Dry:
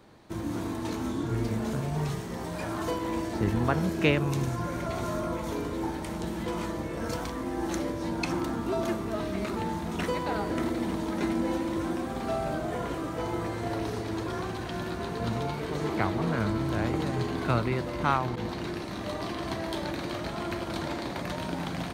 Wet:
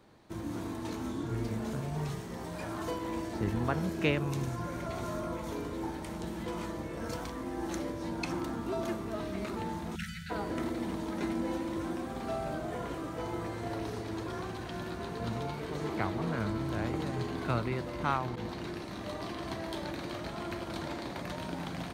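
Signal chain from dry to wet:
time-frequency box erased 0:09.95–0:10.30, 230–1,300 Hz
level −5 dB

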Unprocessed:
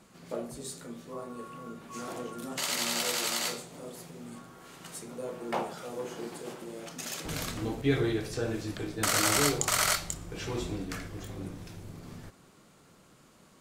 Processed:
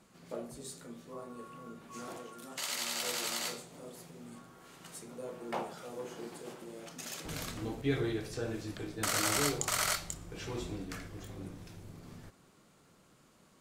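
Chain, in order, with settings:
0:02.17–0:03.03: low-shelf EQ 460 Hz −8 dB
level −5 dB

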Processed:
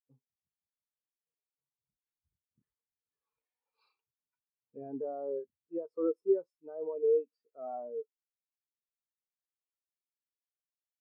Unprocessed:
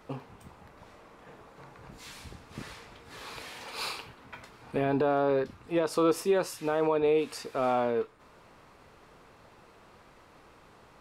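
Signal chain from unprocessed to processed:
every bin expanded away from the loudest bin 2.5 to 1
level −3.5 dB

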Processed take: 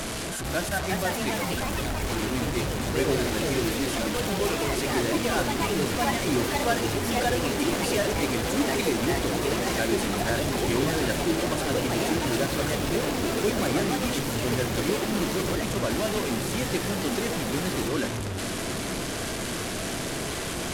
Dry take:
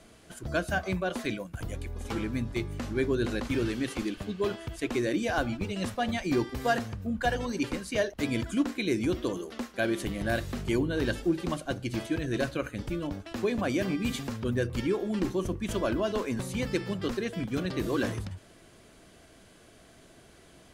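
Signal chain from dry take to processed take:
linear delta modulator 64 kbit/s, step −26 dBFS
feedback delay with all-pass diffusion 1,233 ms, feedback 77%, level −11 dB
delay with pitch and tempo change per echo 446 ms, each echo +3 semitones, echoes 3

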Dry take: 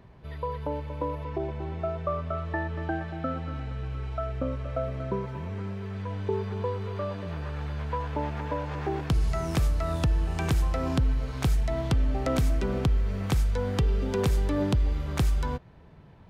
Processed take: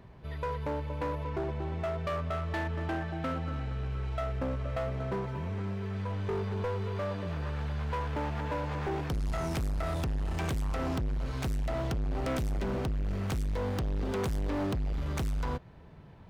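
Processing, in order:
hard clipping −29 dBFS, distortion −7 dB

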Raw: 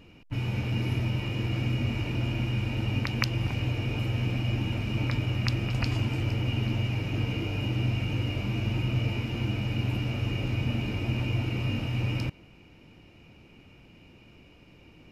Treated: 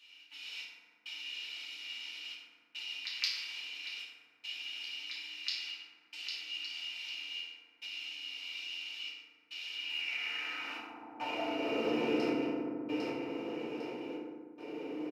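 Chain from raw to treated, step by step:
high-pass filter 210 Hz 12 dB per octave
spectral tilt −2 dB per octave
repeating echo 802 ms, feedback 28%, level −7.5 dB
gate pattern "xxx..xxx" 71 BPM −60 dB
feedback delay network reverb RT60 1.5 s, low-frequency decay 1.35×, high-frequency decay 0.45×, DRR −8 dB
downward compressor 2 to 1, threshold −35 dBFS, peak gain reduction 12 dB
high-pass filter sweep 3,500 Hz → 410 Hz, 0:09.69–0:11.96
dynamic equaliser 4,500 Hz, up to +5 dB, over −54 dBFS, Q 0.73

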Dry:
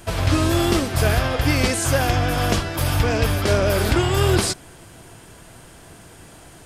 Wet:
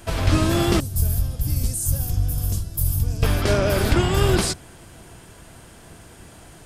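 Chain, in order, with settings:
sub-octave generator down 1 octave, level −2 dB
0:00.80–0:03.23: drawn EQ curve 100 Hz 0 dB, 330 Hz −16 dB, 2,100 Hz −26 dB, 14,000 Hz +10 dB
level −1.5 dB

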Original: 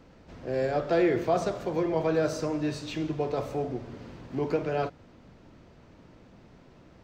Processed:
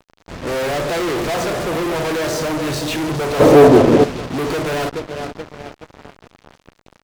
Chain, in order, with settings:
0:02.26–0:02.69: mains-hum notches 50/100/150/200/250/300/350/400/450 Hz
repeating echo 427 ms, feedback 51%, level −14.5 dB
fuzz pedal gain 46 dB, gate −47 dBFS
0:03.40–0:04.04: parametric band 390 Hz +11 dB 2.8 octaves
expander for the loud parts 1.5 to 1, over −23 dBFS
level −1 dB

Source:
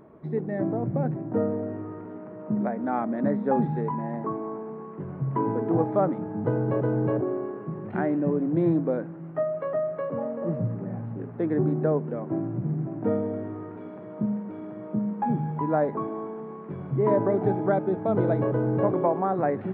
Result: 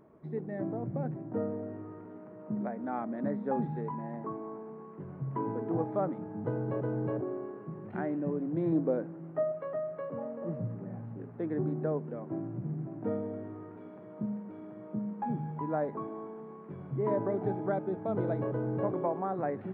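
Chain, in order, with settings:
0:08.72–0:09.52: parametric band 420 Hz +5.5 dB 2.1 octaves
level −8 dB

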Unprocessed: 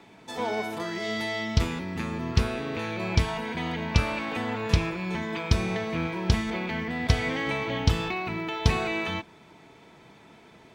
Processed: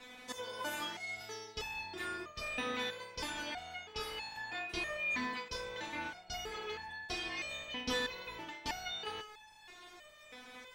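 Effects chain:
ceiling on every frequency bin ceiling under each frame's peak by 16 dB
reversed playback
downward compressor 6 to 1, threshold −33 dBFS, peak gain reduction 18 dB
reversed playback
step-sequenced resonator 3.1 Hz 250–860 Hz
level +13.5 dB

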